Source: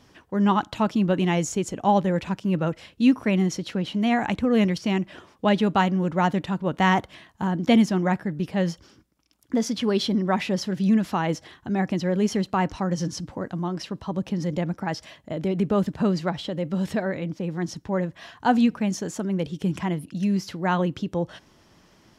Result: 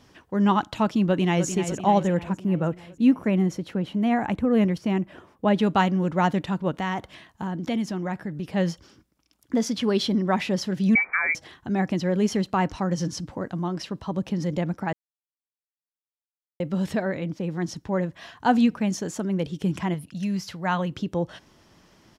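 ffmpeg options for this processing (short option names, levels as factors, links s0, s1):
-filter_complex "[0:a]asplit=2[s0][s1];[s1]afade=t=in:st=1.07:d=0.01,afade=t=out:st=1.47:d=0.01,aecho=0:1:300|600|900|1200|1500|1800|2100|2400|2700:0.334965|0.217728|0.141523|0.0919899|0.0597934|0.0388657|0.0252627|0.0164208|0.0106735[s2];[s0][s2]amix=inputs=2:normalize=0,asettb=1/sr,asplit=3[s3][s4][s5];[s3]atrim=end=2.174[s6];[s4]atrim=start=2.17:end=5.59,asetpts=PTS-STARTPTS,afade=t=in:d=0.004:c=qsin,afade=t=out:st=3.416:d=0.004:c=qsin,equalizer=f=4800:w=0.54:g=-10[s7];[s5]atrim=start=5.586[s8];[s6][s7]acrossfade=d=0.004:c1=hsin:c2=qsin[s9];[s9][s8]acrossfade=d=0.004:c1=qsin:c2=hsin,asettb=1/sr,asplit=3[s10][s11][s12];[s10]atrim=end=6.714[s13];[s11]atrim=start=6.71:end=8.5,asetpts=PTS-STARTPTS,afade=t=in:d=0.004:c=qsin,afade=t=out:st=1.786:d=0.004:c=qsin,acompressor=threshold=0.0316:ratio=2:attack=3.2:release=140:knee=1:detection=peak[s14];[s12]atrim=start=8.496[s15];[s13][s14]acrossfade=d=0.004:c1=hsin:c2=qsin[s16];[s16][s15]acrossfade=d=0.004:c1=qsin:c2=hsin,asettb=1/sr,asplit=3[s17][s18][s19];[s17]atrim=end=10.954[s20];[s18]atrim=start=10.95:end=11.35,asetpts=PTS-STARTPTS,afade=t=in:d=0.004:c=qsin,afade=t=out:st=0.396:d=0.004:c=qsin,lowpass=f=2100:t=q:w=0.5098,lowpass=f=2100:t=q:w=0.6013,lowpass=f=2100:t=q:w=0.9,lowpass=f=2100:t=q:w=2.563,afreqshift=-2500[s21];[s19]atrim=start=11.346[s22];[s20][s21]acrossfade=d=0.004:c1=hsin:c2=qsin[s23];[s23][s22]acrossfade=d=0.004:c1=qsin:c2=hsin,asettb=1/sr,asplit=3[s24][s25][s26];[s24]atrim=end=19.944[s27];[s25]atrim=start=19.94:end=20.92,asetpts=PTS-STARTPTS,afade=t=in:d=0.004:c=qsin,afade=t=out:st=0.976:d=0.004:c=qsin,equalizer=f=320:t=o:w=1.1:g=-9.5[s28];[s26]atrim=start=20.916[s29];[s27][s28]acrossfade=d=0.004:c1=hsin:c2=qsin[s30];[s30][s29]acrossfade=d=0.004:c1=qsin:c2=hsin,asplit=3[s31][s32][s33];[s31]atrim=end=14.93,asetpts=PTS-STARTPTS,afade=t=out:st=14.926:d=0.004:c=hsin[s34];[s32]atrim=start=14.93:end=16.6,asetpts=PTS-STARTPTS,volume=0[s35];[s33]atrim=start=16.6,asetpts=PTS-STARTPTS,afade=t=in:d=0.004:c=hsin[s36];[s34][s35][s36]concat=n=3:v=0:a=1"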